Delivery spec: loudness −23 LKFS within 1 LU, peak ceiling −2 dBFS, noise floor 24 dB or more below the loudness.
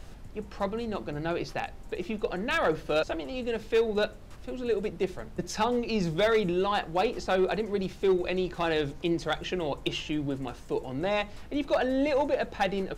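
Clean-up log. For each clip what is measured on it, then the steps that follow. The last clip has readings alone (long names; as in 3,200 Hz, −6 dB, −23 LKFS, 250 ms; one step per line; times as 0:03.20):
share of clipped samples 0.4%; peaks flattened at −18.5 dBFS; background noise floor −45 dBFS; target noise floor −54 dBFS; integrated loudness −29.5 LKFS; sample peak −18.5 dBFS; target loudness −23.0 LKFS
→ clipped peaks rebuilt −18.5 dBFS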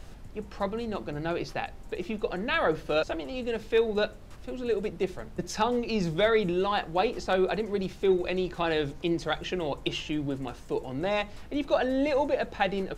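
share of clipped samples 0.0%; background noise floor −45 dBFS; target noise floor −54 dBFS
→ noise reduction from a noise print 9 dB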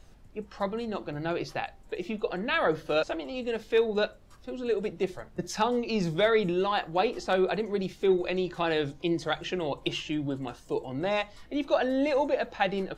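background noise floor −53 dBFS; target noise floor −54 dBFS
→ noise reduction from a noise print 6 dB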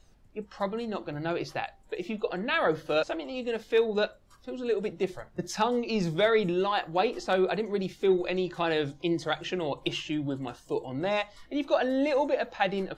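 background noise floor −57 dBFS; integrated loudness −29.5 LKFS; sample peak −11.5 dBFS; target loudness −23.0 LKFS
→ level +6.5 dB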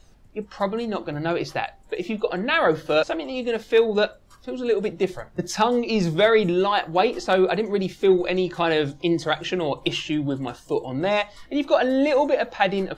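integrated loudness −23.0 LKFS; sample peak −5.0 dBFS; background noise floor −51 dBFS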